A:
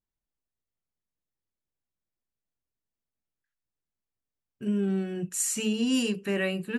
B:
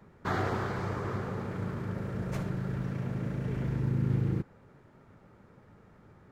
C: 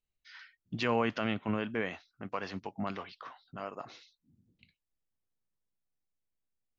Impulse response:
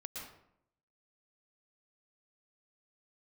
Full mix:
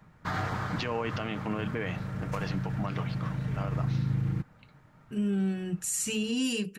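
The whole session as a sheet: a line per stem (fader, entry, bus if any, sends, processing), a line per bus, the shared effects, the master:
+1.0 dB, 0.50 s, no send, bell 630 Hz -5 dB 2.2 oct
+1.5 dB, 0.00 s, no send, bell 400 Hz -11.5 dB 1 oct
+3.0 dB, 0.00 s, no send, dry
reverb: off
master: comb 6.5 ms, depth 30%; limiter -21.5 dBFS, peak gain reduction 8.5 dB

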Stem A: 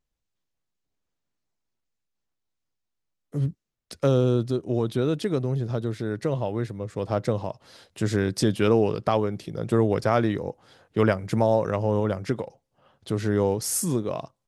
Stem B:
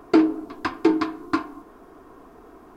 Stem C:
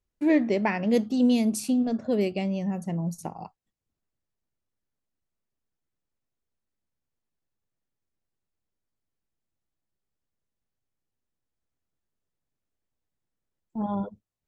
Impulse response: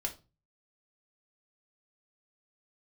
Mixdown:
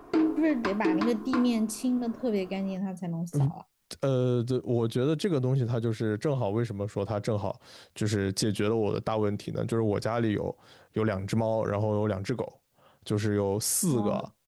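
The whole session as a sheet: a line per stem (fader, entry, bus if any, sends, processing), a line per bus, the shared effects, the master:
+0.5 dB, 0.00 s, no send, dry
-2.5 dB, 0.00 s, no send, dry
-3.5 dB, 0.15 s, no send, requantised 12-bit, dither triangular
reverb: off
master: limiter -17 dBFS, peak gain reduction 9.5 dB

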